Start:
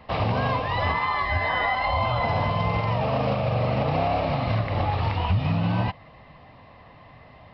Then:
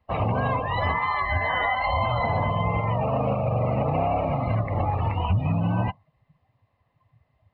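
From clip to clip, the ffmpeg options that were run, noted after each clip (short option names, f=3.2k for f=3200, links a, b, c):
-af "afftdn=nr=24:nf=-32"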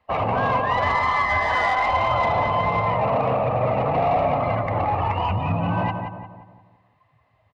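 -filter_complex "[0:a]acrossover=split=2700[a][b];[b]acompressor=threshold=-47dB:ratio=4:attack=1:release=60[c];[a][c]amix=inputs=2:normalize=0,asplit=2[d][e];[e]highpass=f=720:p=1,volume=14dB,asoftclip=type=tanh:threshold=-13.5dB[f];[d][f]amix=inputs=2:normalize=0,lowpass=f=3.2k:p=1,volume=-6dB,asplit=2[g][h];[h]adelay=176,lowpass=f=2k:p=1,volume=-5.5dB,asplit=2[i][j];[j]adelay=176,lowpass=f=2k:p=1,volume=0.47,asplit=2[k][l];[l]adelay=176,lowpass=f=2k:p=1,volume=0.47,asplit=2[m][n];[n]adelay=176,lowpass=f=2k:p=1,volume=0.47,asplit=2[o][p];[p]adelay=176,lowpass=f=2k:p=1,volume=0.47,asplit=2[q][r];[r]adelay=176,lowpass=f=2k:p=1,volume=0.47[s];[g][i][k][m][o][q][s]amix=inputs=7:normalize=0"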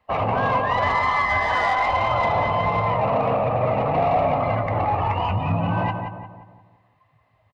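-filter_complex "[0:a]asplit=2[a][b];[b]adelay=19,volume=-13dB[c];[a][c]amix=inputs=2:normalize=0"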